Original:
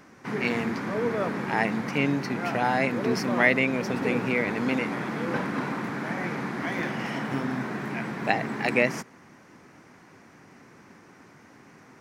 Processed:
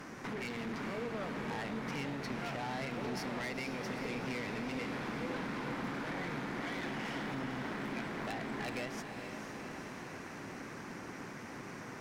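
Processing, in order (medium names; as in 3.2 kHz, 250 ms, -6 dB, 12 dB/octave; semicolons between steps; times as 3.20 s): dynamic bell 3.5 kHz, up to +6 dB, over -45 dBFS, Q 2.1; compression 3:1, threshold -45 dBFS, peak gain reduction 22.5 dB; valve stage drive 43 dB, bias 0.55; echo that smears into a reverb 478 ms, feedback 68%, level -7 dB; trim +7.5 dB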